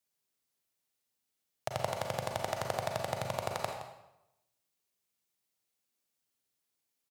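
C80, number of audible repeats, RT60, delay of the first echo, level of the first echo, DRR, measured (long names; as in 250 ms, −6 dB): 6.0 dB, 1, 0.90 s, 168 ms, −13.0 dB, 1.5 dB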